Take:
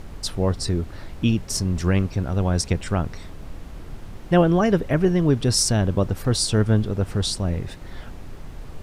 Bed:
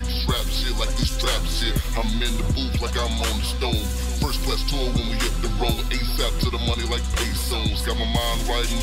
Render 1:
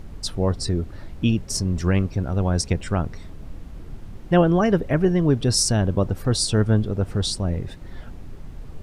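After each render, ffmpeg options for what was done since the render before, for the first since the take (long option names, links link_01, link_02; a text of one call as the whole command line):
ffmpeg -i in.wav -af "afftdn=noise_reduction=6:noise_floor=-39" out.wav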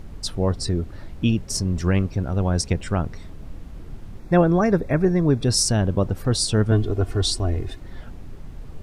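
ffmpeg -i in.wav -filter_complex "[0:a]asettb=1/sr,asplit=3[link_01][link_02][link_03];[link_01]atrim=end=4.194[link_04];[link_02]atrim=start=4.19:end=5.44,asetpts=PTS-STARTPTS,afade=type=in:duration=0.004:curve=qsin,afade=type=out:start_time=1.246:duration=0.004:curve=qsin,asuperstop=centerf=3000:order=12:qfactor=5.5[link_05];[link_03]atrim=start=5.436[link_06];[link_04][link_05]acrossfade=duration=0.004:curve1=hsin:curve2=qsin[link_07];[link_07][link_06]acrossfade=duration=0.004:curve1=qsin:curve2=hsin,asettb=1/sr,asplit=3[link_08][link_09][link_10];[link_08]atrim=end=6.714[link_11];[link_09]atrim=start=6.71:end=7.8,asetpts=PTS-STARTPTS,afade=type=in:duration=0.004:curve=qsin,afade=type=out:start_time=1.086:duration=0.004:curve=qsin,aecho=1:1:2.8:0.83,atrim=end_sample=48069[link_12];[link_10]atrim=start=7.796[link_13];[link_11][link_12]acrossfade=duration=0.004:curve1=hsin:curve2=qsin[link_14];[link_14][link_13]acrossfade=duration=0.004:curve1=qsin:curve2=hsin" out.wav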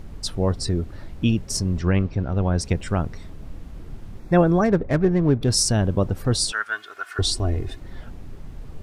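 ffmpeg -i in.wav -filter_complex "[0:a]asplit=3[link_01][link_02][link_03];[link_01]afade=type=out:start_time=1.77:duration=0.02[link_04];[link_02]lowpass=4300,afade=type=in:start_time=1.77:duration=0.02,afade=type=out:start_time=2.6:duration=0.02[link_05];[link_03]afade=type=in:start_time=2.6:duration=0.02[link_06];[link_04][link_05][link_06]amix=inputs=3:normalize=0,asplit=3[link_07][link_08][link_09];[link_07]afade=type=out:start_time=4.64:duration=0.02[link_10];[link_08]adynamicsmooth=sensitivity=4:basefreq=1200,afade=type=in:start_time=4.64:duration=0.02,afade=type=out:start_time=5.51:duration=0.02[link_11];[link_09]afade=type=in:start_time=5.51:duration=0.02[link_12];[link_10][link_11][link_12]amix=inputs=3:normalize=0,asettb=1/sr,asplit=3[link_13][link_14][link_15];[link_13]atrim=end=6.524[link_16];[link_14]atrim=start=6.52:end=7.19,asetpts=PTS-STARTPTS,afade=type=in:duration=0.004:curve=qsin,afade=type=out:start_time=0.666:duration=0.004:curve=qsin,highpass=frequency=1500:width_type=q:width=3.8[link_17];[link_15]atrim=start=7.186[link_18];[link_16][link_17]acrossfade=duration=0.004:curve1=hsin:curve2=qsin[link_19];[link_19][link_18]acrossfade=duration=0.004:curve1=qsin:curve2=hsin" out.wav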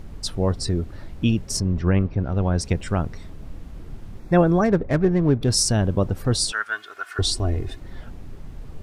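ffmpeg -i in.wav -filter_complex "[0:a]asettb=1/sr,asplit=3[link_01][link_02][link_03];[link_01]atrim=end=1.604[link_04];[link_02]atrim=start=1.6:end=2.25,asetpts=PTS-STARTPTS,afade=type=in:duration=0.004:curve=qsin,afade=type=out:start_time=0.646:duration=0.004:curve=qsin,aemphasis=mode=reproduction:type=75fm[link_05];[link_03]atrim=start=2.246[link_06];[link_04][link_05]acrossfade=duration=0.004:curve1=hsin:curve2=qsin[link_07];[link_07][link_06]acrossfade=duration=0.004:curve1=qsin:curve2=hsin" out.wav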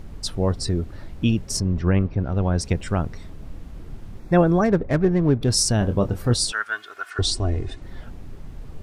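ffmpeg -i in.wav -filter_complex "[0:a]asettb=1/sr,asplit=3[link_01][link_02][link_03];[link_01]atrim=end=5.784[link_04];[link_02]atrim=start=5.78:end=6.34,asetpts=PTS-STARTPTS,afade=type=in:duration=0.004:curve=qsin,afade=type=out:start_time=0.556:duration=0.004:curve=qsin,asplit=2[link_05][link_06];[link_06]adelay=25,volume=-7.5dB[link_07];[link_05][link_07]amix=inputs=2:normalize=0,atrim=end_sample=24696[link_08];[link_03]atrim=start=6.336[link_09];[link_04][link_08]acrossfade=duration=0.004:curve1=hsin:curve2=qsin[link_10];[link_10][link_09]acrossfade=duration=0.004:curve1=qsin:curve2=hsin,asettb=1/sr,asplit=3[link_11][link_12][link_13];[link_11]atrim=end=7.104[link_14];[link_12]atrim=start=7.1:end=7.82,asetpts=PTS-STARTPTS,afade=type=in:duration=0.004:curve=qsin,afade=type=out:start_time=0.716:duration=0.004:curve=qsin,lowpass=frequency=9700:width=0.5412,lowpass=frequency=9700:width=1.3066[link_15];[link_13]atrim=start=7.816[link_16];[link_14][link_15]acrossfade=duration=0.004:curve1=hsin:curve2=qsin[link_17];[link_17][link_16]acrossfade=duration=0.004:curve1=qsin:curve2=hsin" out.wav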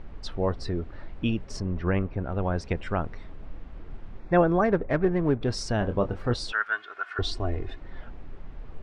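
ffmpeg -i in.wav -af "lowpass=2600,equalizer=frequency=120:width=0.42:gain=-8.5" out.wav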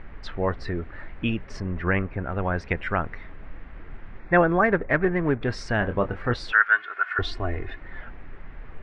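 ffmpeg -i in.wav -af "lowpass=frequency=2500:poles=1,equalizer=frequency=1900:width_type=o:width=1.3:gain=13" out.wav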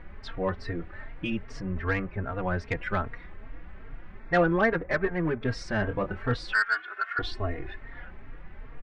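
ffmpeg -i in.wav -filter_complex "[0:a]asoftclip=type=tanh:threshold=-12dB,asplit=2[link_01][link_02];[link_02]adelay=3.7,afreqshift=2.5[link_03];[link_01][link_03]amix=inputs=2:normalize=1" out.wav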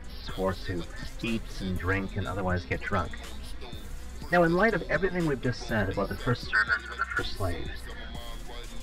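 ffmpeg -i in.wav -i bed.wav -filter_complex "[1:a]volume=-19.5dB[link_01];[0:a][link_01]amix=inputs=2:normalize=0" out.wav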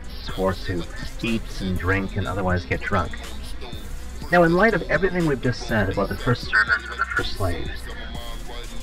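ffmpeg -i in.wav -af "volume=6.5dB" out.wav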